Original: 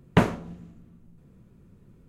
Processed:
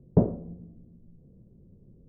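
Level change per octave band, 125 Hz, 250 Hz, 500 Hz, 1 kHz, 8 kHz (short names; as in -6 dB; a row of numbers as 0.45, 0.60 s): -0.5 dB, -1.0 dB, -1.0 dB, -12.5 dB, under -30 dB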